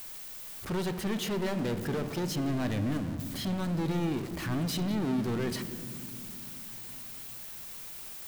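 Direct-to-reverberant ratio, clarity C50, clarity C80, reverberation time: 9.0 dB, 11.0 dB, 12.0 dB, 2.3 s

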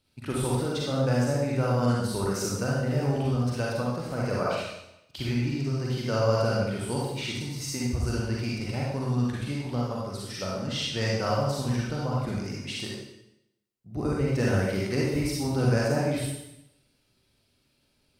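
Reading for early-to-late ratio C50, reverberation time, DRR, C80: −2.0 dB, 0.85 s, −5.0 dB, 2.5 dB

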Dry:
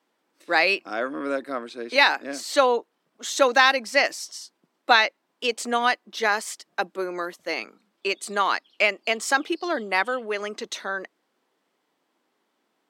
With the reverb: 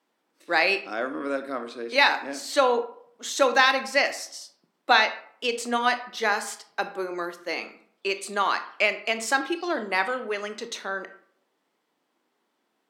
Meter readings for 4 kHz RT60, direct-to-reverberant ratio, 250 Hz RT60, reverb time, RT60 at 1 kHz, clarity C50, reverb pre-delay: 0.35 s, 8.5 dB, 0.60 s, 0.65 s, 0.60 s, 12.0 dB, 21 ms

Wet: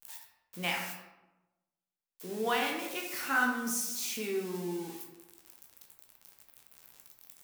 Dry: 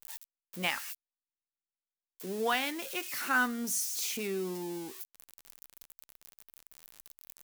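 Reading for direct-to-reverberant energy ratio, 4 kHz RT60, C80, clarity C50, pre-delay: −0.5 dB, 0.60 s, 7.0 dB, 4.0 dB, 13 ms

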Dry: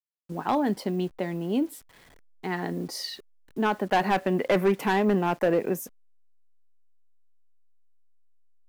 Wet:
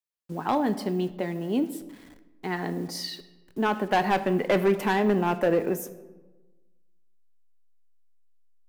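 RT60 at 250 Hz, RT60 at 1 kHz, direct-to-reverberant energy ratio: 1.4 s, 1.1 s, 11.5 dB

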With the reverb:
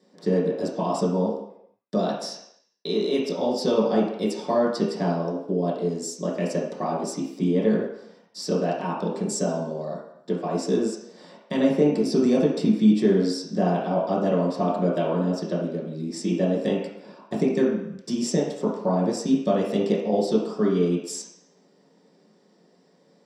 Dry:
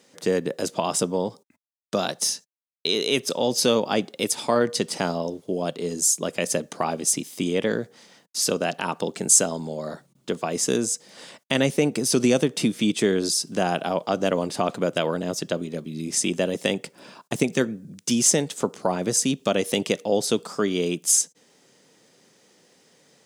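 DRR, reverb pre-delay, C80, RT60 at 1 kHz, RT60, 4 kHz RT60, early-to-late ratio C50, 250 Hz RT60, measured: −6.5 dB, 3 ms, 6.0 dB, 0.80 s, 0.75 s, 0.70 s, 3.0 dB, 0.55 s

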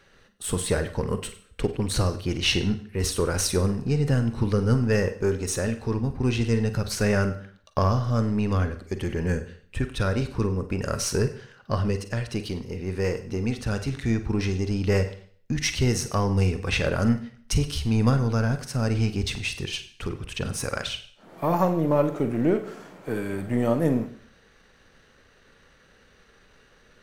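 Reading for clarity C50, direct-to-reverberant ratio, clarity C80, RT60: 11.5 dB, 8.5 dB, 15.0 dB, 0.55 s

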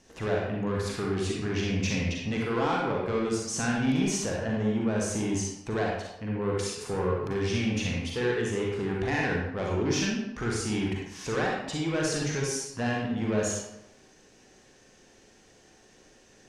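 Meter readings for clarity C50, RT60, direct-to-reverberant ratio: −0.5 dB, 0.90 s, −3.0 dB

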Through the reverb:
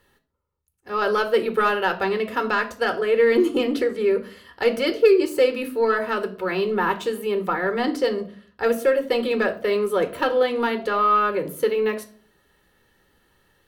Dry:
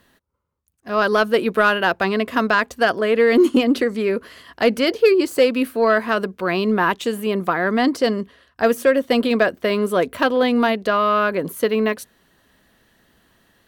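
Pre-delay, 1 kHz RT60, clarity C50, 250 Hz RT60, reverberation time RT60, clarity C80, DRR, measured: 4 ms, 0.40 s, 15.0 dB, 0.60 s, 0.45 s, 19.0 dB, 7.5 dB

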